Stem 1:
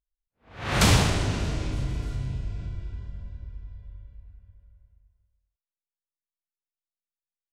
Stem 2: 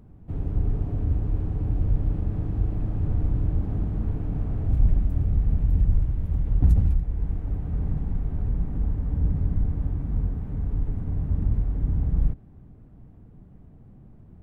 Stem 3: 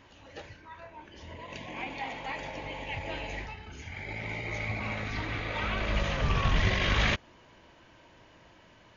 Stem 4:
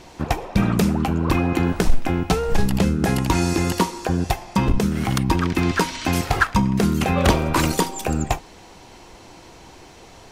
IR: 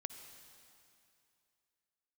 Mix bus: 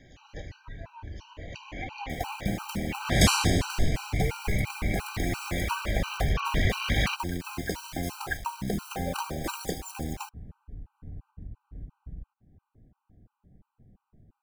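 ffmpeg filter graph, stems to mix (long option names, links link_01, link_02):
-filter_complex "[0:a]adelay=2400,volume=1dB[link_01];[1:a]acompressor=threshold=-29dB:ratio=8,volume=-7.5dB[link_02];[2:a]volume=1dB[link_03];[3:a]bandreject=frequency=283.2:width_type=h:width=4,bandreject=frequency=566.4:width_type=h:width=4,bandreject=frequency=849.6:width_type=h:width=4,bandreject=frequency=1132.8:width_type=h:width=4,bandreject=frequency=1416:width_type=h:width=4,bandreject=frequency=1699.2:width_type=h:width=4,bandreject=frequency=1982.4:width_type=h:width=4,bandreject=frequency=2265.6:width_type=h:width=4,bandreject=frequency=2548.8:width_type=h:width=4,bandreject=frequency=2832:width_type=h:width=4,bandreject=frequency=3115.2:width_type=h:width=4,bandreject=frequency=3398.4:width_type=h:width=4,bandreject=frequency=3681.6:width_type=h:width=4,bandreject=frequency=3964.8:width_type=h:width=4,bandreject=frequency=4248:width_type=h:width=4,bandreject=frequency=4531.2:width_type=h:width=4,bandreject=frequency=4814.4:width_type=h:width=4,bandreject=frequency=5097.6:width_type=h:width=4,bandreject=frequency=5380.8:width_type=h:width=4,bandreject=frequency=5664:width_type=h:width=4,bandreject=frequency=5947.2:width_type=h:width=4,adynamicequalizer=threshold=0.0251:dfrequency=680:dqfactor=0.88:tfrequency=680:tqfactor=0.88:attack=5:release=100:ratio=0.375:range=2:mode=boostabove:tftype=bell,acrusher=bits=4:mix=0:aa=0.000001,adelay=1900,volume=-12dB[link_04];[link_01][link_02][link_03][link_04]amix=inputs=4:normalize=0,highshelf=frequency=5300:gain=3.5,afftfilt=real='re*gt(sin(2*PI*2.9*pts/sr)*(1-2*mod(floor(b*sr/1024/780),2)),0)':imag='im*gt(sin(2*PI*2.9*pts/sr)*(1-2*mod(floor(b*sr/1024/780),2)),0)':win_size=1024:overlap=0.75"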